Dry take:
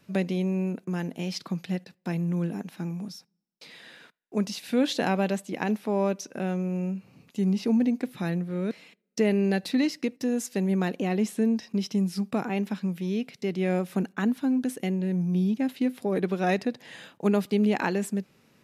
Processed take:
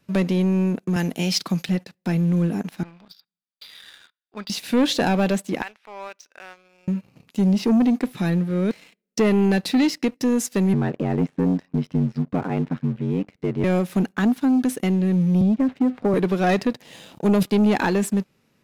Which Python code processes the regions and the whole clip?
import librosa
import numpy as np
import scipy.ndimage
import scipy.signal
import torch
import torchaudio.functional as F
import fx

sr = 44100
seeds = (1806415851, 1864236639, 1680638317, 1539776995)

y = fx.chain(x, sr, fx.highpass(hz=95.0, slope=24),
    fx.high_shelf(hz=2500.0, db=8.0), at=(0.96, 1.69))
y = fx.chain(y, sr, fx.cheby_ripple(hz=4900.0, ripple_db=9),
    fx.tilt_shelf(db=-9.5, hz=1500.0), at=(2.83, 4.5))
y = fx.chain(y, sr, fx.highpass(hz=1500.0, slope=12),
    fx.spacing_loss(db_at_10k=22), at=(5.62, 6.88))
y = fx.chain(y, sr, fx.lowpass(hz=1800.0, slope=12),
    fx.ring_mod(carrier_hz=46.0), at=(10.73, 13.64))
y = fx.chain(y, sr, fx.lowpass(hz=1500.0, slope=12),
    fx.notch(hz=340.0, q=8.4),
    fx.band_squash(depth_pct=100), at=(15.41, 16.14))
y = fx.chain(y, sr, fx.peak_eq(hz=1600.0, db=-11.0, octaves=0.87),
    fx.sustainer(db_per_s=21.0), at=(16.83, 17.43))
y = fx.low_shelf(y, sr, hz=74.0, db=6.0)
y = fx.leveller(y, sr, passes=2)